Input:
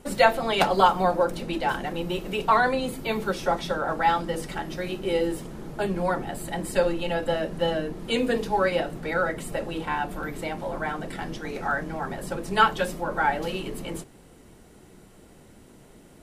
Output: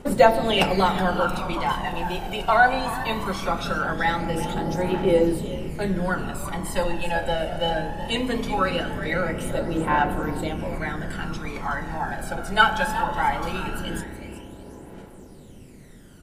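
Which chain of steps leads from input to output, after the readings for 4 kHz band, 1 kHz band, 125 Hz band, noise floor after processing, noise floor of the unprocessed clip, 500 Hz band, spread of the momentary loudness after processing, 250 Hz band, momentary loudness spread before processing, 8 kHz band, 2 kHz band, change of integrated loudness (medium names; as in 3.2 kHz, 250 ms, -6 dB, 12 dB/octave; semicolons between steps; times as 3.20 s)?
+3.0 dB, +1.5 dB, +5.0 dB, -45 dBFS, -52 dBFS, +1.0 dB, 12 LU, +3.5 dB, 11 LU, +2.0 dB, +3.5 dB, +2.0 dB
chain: frequency-shifting echo 372 ms, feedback 36%, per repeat +40 Hz, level -12 dB; spring tank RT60 3.2 s, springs 31 ms, chirp 35 ms, DRR 9.5 dB; phaser 0.2 Hz, delay 1.4 ms, feedback 58%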